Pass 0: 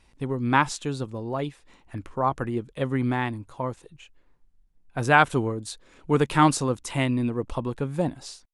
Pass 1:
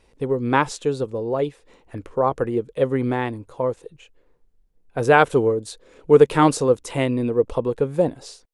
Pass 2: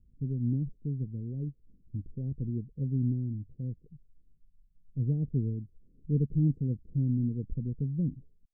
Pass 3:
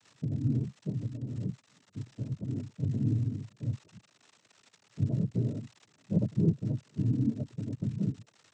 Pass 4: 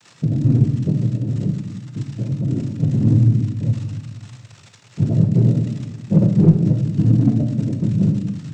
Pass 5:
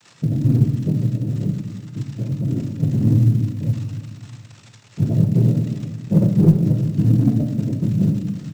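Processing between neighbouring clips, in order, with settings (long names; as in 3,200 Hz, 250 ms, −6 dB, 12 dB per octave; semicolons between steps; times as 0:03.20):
parametric band 470 Hz +13.5 dB 0.67 octaves
inverse Chebyshev low-pass filter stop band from 920 Hz, stop band 70 dB
surface crackle 150 per second −40 dBFS; cochlear-implant simulation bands 12
in parallel at −4 dB: hard clipping −24.5 dBFS, distortion −13 dB; on the sum: rectangular room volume 570 cubic metres, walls mixed, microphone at 0.86 metres; level +8 dB
log-companded quantiser 8 bits; repeating echo 357 ms, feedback 38%, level −17.5 dB; level −1 dB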